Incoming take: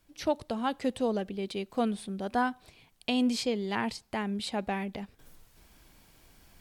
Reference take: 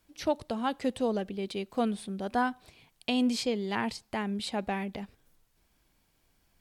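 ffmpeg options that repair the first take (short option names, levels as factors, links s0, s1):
-af "agate=range=0.0891:threshold=0.00224,asetnsamples=n=441:p=0,asendcmd='5.19 volume volume -11.5dB',volume=1"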